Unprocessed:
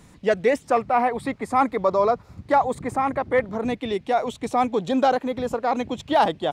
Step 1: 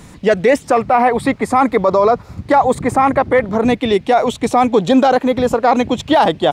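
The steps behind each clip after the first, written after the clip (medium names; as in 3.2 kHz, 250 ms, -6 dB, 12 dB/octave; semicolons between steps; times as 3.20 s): loudness maximiser +14 dB; trim -2.5 dB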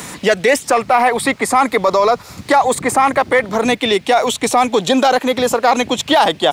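tilt EQ +3 dB/octave; in parallel at -11 dB: saturation -18 dBFS, distortion -7 dB; on the sum: three bands compressed up and down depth 40%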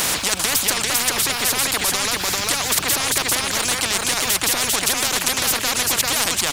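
on a send: delay 395 ms -5 dB; on the sum: spectrum-flattening compressor 10:1; trim -2.5 dB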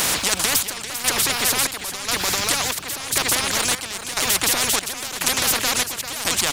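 square tremolo 0.96 Hz, depth 65%, duty 60%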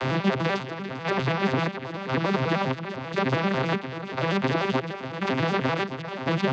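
vocoder on a broken chord major triad, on C3, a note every 98 ms; distance through air 310 m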